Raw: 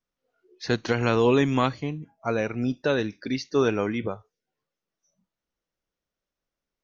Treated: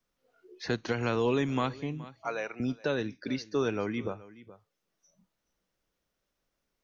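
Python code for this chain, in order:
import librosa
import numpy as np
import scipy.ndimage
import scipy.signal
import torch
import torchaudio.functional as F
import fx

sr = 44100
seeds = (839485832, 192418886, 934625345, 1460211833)

y = fx.highpass(x, sr, hz=590.0, slope=12, at=(2.12, 2.6))
y = y + 10.0 ** (-22.0 / 20.0) * np.pad(y, (int(422 * sr / 1000.0), 0))[:len(y)]
y = fx.band_squash(y, sr, depth_pct=40)
y = F.gain(torch.from_numpy(y), -6.5).numpy()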